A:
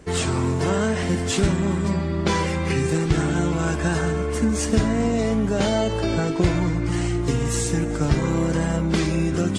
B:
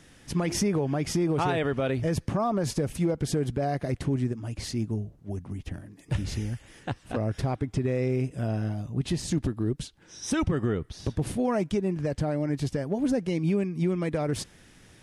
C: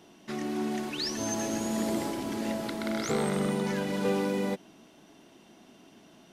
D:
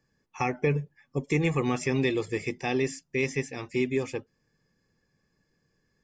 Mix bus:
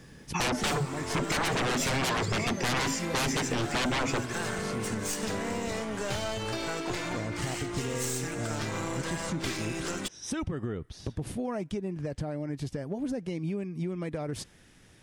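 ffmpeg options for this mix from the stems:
-filter_complex "[0:a]highpass=f=1k:p=1,aeval=exprs='clip(val(0),-1,0.0178)':c=same,adelay=500,volume=3dB[a];[1:a]volume=-3.5dB[b];[2:a]adelay=1250,volume=-5dB[c];[3:a]equalizer=f=190:w=0.38:g=5.5,aeval=exprs='0.299*sin(PI/2*8.91*val(0)/0.299)':c=same,volume=-5dB[d];[a][b][c][d]amix=inputs=4:normalize=0,acompressor=threshold=-30dB:ratio=3"

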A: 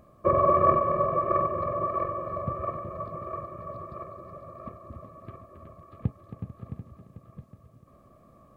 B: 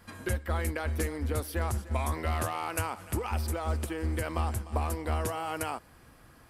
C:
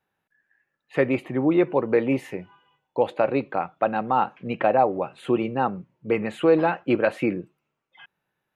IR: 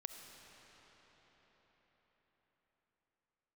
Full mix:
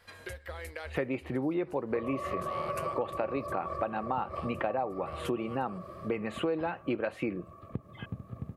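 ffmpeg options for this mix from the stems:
-filter_complex "[0:a]acompressor=threshold=-27dB:ratio=6,adelay=1700,volume=-4dB,asplit=2[a][b];[b]volume=-3.5dB[c];[1:a]acompressor=threshold=-32dB:ratio=5,equalizer=f=250:t=o:w=1:g=-11,equalizer=f=500:t=o:w=1:g=9,equalizer=f=2k:t=o:w=1:g=7,equalizer=f=4k:t=o:w=1:g=8,volume=-8.5dB[d];[2:a]volume=-1dB,asplit=2[e][f];[f]apad=whole_len=286388[g];[d][g]sidechaincompress=threshold=-35dB:ratio=8:attack=8.1:release=105[h];[3:a]atrim=start_sample=2205[i];[c][i]afir=irnorm=-1:irlink=0[j];[a][h][e][j]amix=inputs=4:normalize=0,acompressor=threshold=-30dB:ratio=4"

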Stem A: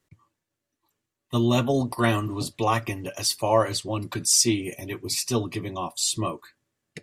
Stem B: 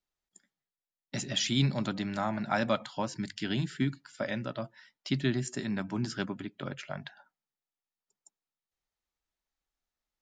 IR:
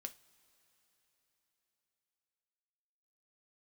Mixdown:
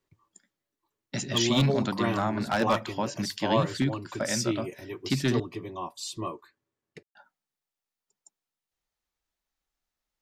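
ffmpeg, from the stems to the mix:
-filter_complex "[0:a]equalizer=f=400:t=o:w=0.67:g=7,equalizer=f=1k:t=o:w=0.67:g=6,equalizer=f=10k:t=o:w=0.67:g=-10,volume=-9.5dB[a];[1:a]aeval=exprs='0.106*(abs(mod(val(0)/0.106+3,4)-2)-1)':c=same,volume=3dB,asplit=3[b][c][d];[b]atrim=end=5.4,asetpts=PTS-STARTPTS,afade=t=out:st=5.396:d=0.004:c=hsin[e];[c]atrim=start=5.4:end=7.15,asetpts=PTS-STARTPTS,volume=0[f];[d]atrim=start=7.15,asetpts=PTS-STARTPTS,afade=t=in:d=0.004:c=hsin[g];[e][f][g]concat=n=3:v=0:a=1[h];[a][h]amix=inputs=2:normalize=0"

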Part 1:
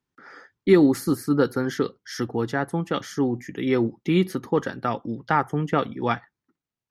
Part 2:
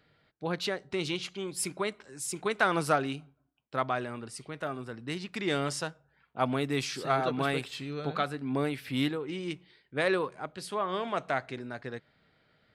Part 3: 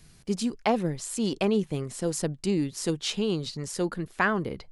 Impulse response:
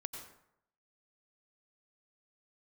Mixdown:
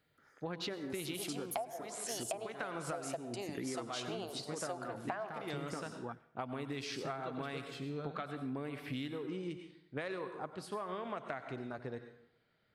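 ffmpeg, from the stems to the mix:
-filter_complex "[0:a]aexciter=amount=15.1:drive=1.9:freq=6.6k,aeval=exprs='val(0)*pow(10,-18*(0.5-0.5*cos(2*PI*0.55*n/s))/20)':c=same,volume=-4dB,asplit=2[a][b];[b]volume=-22dB[c];[1:a]volume=-5dB,asplit=2[d][e];[e]volume=-4dB[f];[2:a]highpass=f=680:t=q:w=8.4,adelay=900,volume=-9dB,asplit=2[g][h];[h]volume=-3dB[i];[a][d]amix=inputs=2:normalize=0,afwtdn=0.00562,acompressor=threshold=-35dB:ratio=6,volume=0dB[j];[3:a]atrim=start_sample=2205[k];[c][f][i]amix=inputs=3:normalize=0[l];[l][k]afir=irnorm=-1:irlink=0[m];[g][j][m]amix=inputs=3:normalize=0,acompressor=threshold=-36dB:ratio=20"

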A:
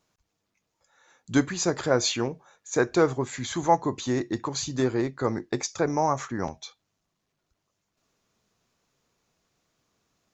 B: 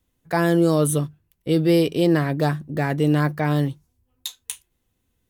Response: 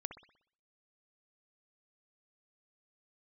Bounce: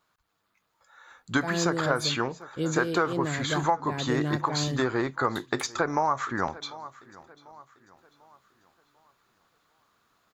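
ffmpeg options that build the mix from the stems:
-filter_complex "[0:a]equalizer=f=1.3k:t=o:w=1.4:g=13.5,volume=-5.5dB,asplit=2[a][b];[b]volume=-23dB[c];[1:a]aemphasis=mode=reproduction:type=50fm,adelay=1100,volume=-13dB[d];[c]aecho=0:1:744|1488|2232|2976|3720|4464:1|0.4|0.16|0.064|0.0256|0.0102[e];[a][d][e]amix=inputs=3:normalize=0,dynaudnorm=f=190:g=3:m=4dB,aexciter=amount=1.3:drive=5.2:freq=3.3k,acompressor=threshold=-21dB:ratio=6"

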